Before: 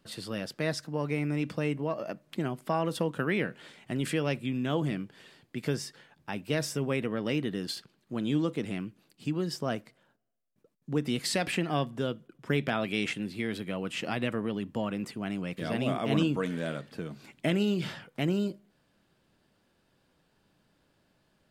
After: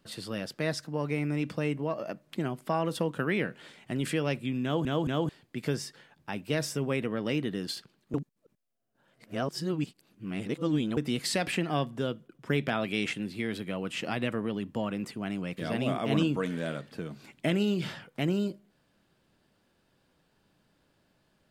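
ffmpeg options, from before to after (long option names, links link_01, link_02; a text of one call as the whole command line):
ffmpeg -i in.wav -filter_complex "[0:a]asplit=6[link_01][link_02][link_03][link_04][link_05][link_06];[link_01]atrim=end=4.852[link_07];[link_02]atrim=start=4.628:end=4.852[link_08];[link_03]atrim=start=4.628:end=4.852[link_09];[link_04]atrim=start=5.288:end=8.142[link_10];[link_05]atrim=start=8.138:end=10.972,asetpts=PTS-STARTPTS,areverse[link_11];[link_06]atrim=start=10.968[link_12];[link_07][link_08]acrossfade=duration=0.004:curve1=hsin:curve2=hsin[link_13];[link_13][link_09]acrossfade=duration=0.004:curve1=hsin:curve2=hsin[link_14];[link_14][link_10]acrossfade=duration=0.004:curve1=hsin:curve2=hsin[link_15];[link_15][link_11]acrossfade=duration=0.004:curve1=hsin:curve2=hsin[link_16];[link_16][link_12]acrossfade=duration=0.004:curve1=hsin:curve2=hsin" out.wav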